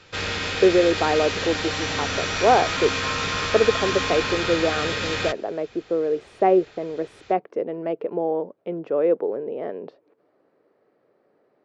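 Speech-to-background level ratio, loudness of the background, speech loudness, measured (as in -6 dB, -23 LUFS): 1.5 dB, -25.0 LUFS, -23.5 LUFS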